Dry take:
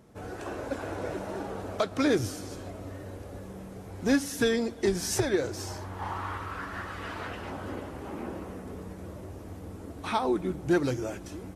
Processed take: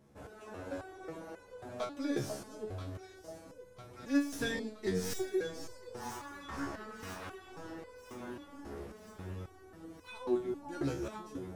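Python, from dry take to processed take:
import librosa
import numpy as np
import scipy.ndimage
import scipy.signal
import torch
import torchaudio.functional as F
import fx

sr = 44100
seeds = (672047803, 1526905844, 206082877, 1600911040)

y = fx.tracing_dist(x, sr, depth_ms=0.043)
y = fx.echo_alternate(y, sr, ms=492, hz=890.0, feedback_pct=79, wet_db=-7)
y = fx.resonator_held(y, sr, hz=3.7, low_hz=70.0, high_hz=500.0)
y = y * 10.0 ** (1.0 / 20.0)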